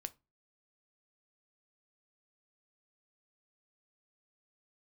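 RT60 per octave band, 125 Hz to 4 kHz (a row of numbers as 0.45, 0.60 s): 0.40, 0.35, 0.25, 0.25, 0.20, 0.20 s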